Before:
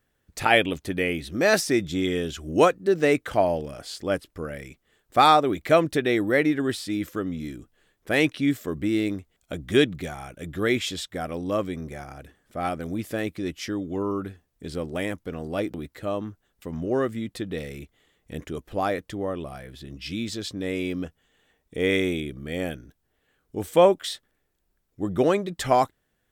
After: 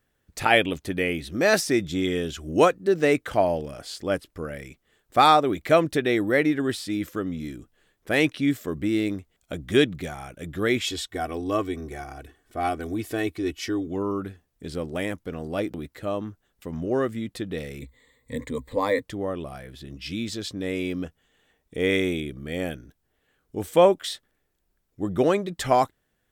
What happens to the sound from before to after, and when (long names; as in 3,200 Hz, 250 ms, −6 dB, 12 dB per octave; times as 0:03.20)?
0:10.84–0:13.87: comb filter 2.7 ms
0:17.81–0:19.03: EQ curve with evenly spaced ripples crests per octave 1, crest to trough 17 dB